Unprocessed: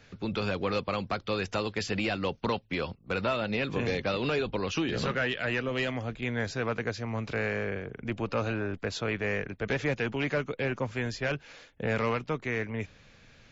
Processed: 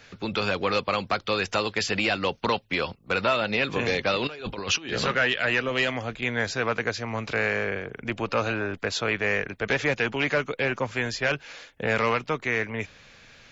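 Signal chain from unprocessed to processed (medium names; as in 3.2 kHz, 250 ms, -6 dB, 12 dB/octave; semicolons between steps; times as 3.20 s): 4.27–4.93 s: compressor with a negative ratio -35 dBFS, ratio -0.5; bass shelf 430 Hz -9 dB; trim +8 dB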